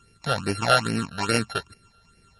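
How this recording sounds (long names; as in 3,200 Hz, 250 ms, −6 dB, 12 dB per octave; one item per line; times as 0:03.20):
a buzz of ramps at a fixed pitch in blocks of 32 samples
phaser sweep stages 8, 2.4 Hz, lowest notch 290–1,100 Hz
a quantiser's noise floor 12 bits, dither none
MP3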